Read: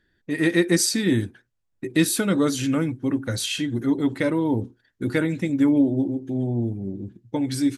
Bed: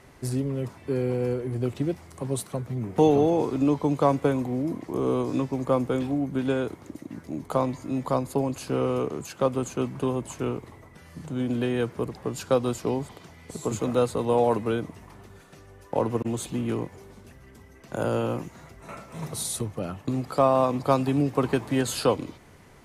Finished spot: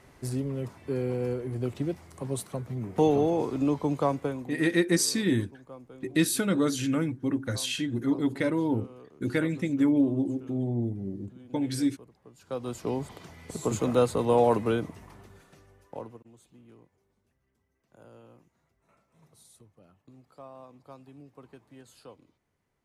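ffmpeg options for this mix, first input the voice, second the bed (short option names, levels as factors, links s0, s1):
-filter_complex "[0:a]adelay=4200,volume=0.596[s0];[1:a]volume=8.91,afade=t=out:st=3.93:d=0.77:silence=0.112202,afade=t=in:st=12.39:d=0.83:silence=0.0749894,afade=t=out:st=14.7:d=1.52:silence=0.0473151[s1];[s0][s1]amix=inputs=2:normalize=0"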